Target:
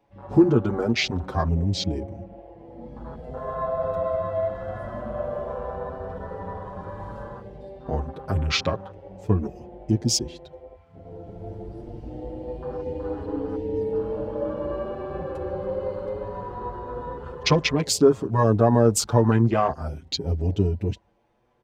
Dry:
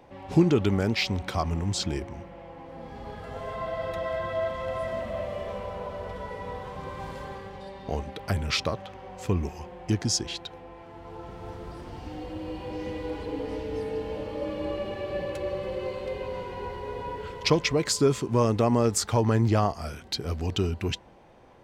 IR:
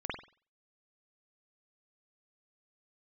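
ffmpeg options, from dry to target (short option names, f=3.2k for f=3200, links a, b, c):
-filter_complex "[0:a]afwtdn=0.0178,asplit=2[a][b];[b]adelay=6.7,afreqshift=0.43[c];[a][c]amix=inputs=2:normalize=1,volume=6.5dB"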